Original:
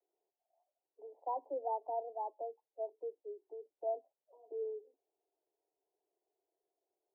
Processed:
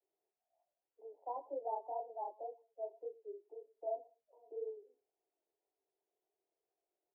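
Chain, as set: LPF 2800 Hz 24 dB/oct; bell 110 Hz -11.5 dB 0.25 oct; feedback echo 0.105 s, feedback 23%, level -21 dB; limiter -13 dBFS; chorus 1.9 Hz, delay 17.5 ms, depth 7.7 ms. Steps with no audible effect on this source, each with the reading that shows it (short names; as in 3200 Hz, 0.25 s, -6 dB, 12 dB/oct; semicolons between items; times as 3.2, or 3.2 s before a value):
LPF 2800 Hz: input band ends at 1000 Hz; bell 110 Hz: input band starts at 270 Hz; limiter -13 dBFS: input peak -26.0 dBFS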